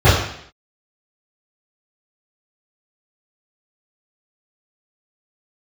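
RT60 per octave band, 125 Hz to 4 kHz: 0.55 s, 0.65 s, 0.65 s, 0.65 s, 0.70 s, 0.70 s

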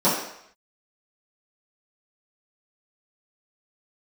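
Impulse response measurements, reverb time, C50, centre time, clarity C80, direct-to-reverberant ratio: 0.70 s, 3.5 dB, 48 ms, 6.0 dB, -13.0 dB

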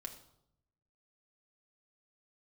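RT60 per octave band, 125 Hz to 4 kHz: 1.3 s, 0.95 s, 0.80 s, 0.70 s, 0.55 s, 0.55 s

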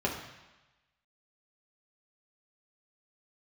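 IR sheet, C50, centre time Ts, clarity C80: 6.0 dB, 33 ms, 8.0 dB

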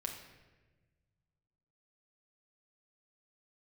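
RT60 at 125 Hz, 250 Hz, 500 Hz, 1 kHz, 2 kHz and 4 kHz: 2.5 s, 1.8 s, 1.5 s, 1.1 s, 1.2 s, 0.90 s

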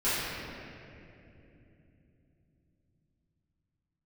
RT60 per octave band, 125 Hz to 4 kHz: 5.8 s, 5.0 s, 3.6 s, 2.3 s, 2.6 s, 1.8 s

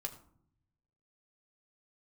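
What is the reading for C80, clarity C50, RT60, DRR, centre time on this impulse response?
15.0 dB, 13.0 dB, 0.65 s, 4.0 dB, 10 ms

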